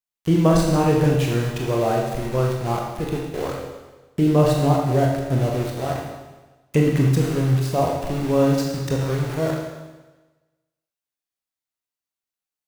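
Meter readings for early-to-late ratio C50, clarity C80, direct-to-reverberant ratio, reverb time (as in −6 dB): 2.0 dB, 4.0 dB, −1.5 dB, 1.2 s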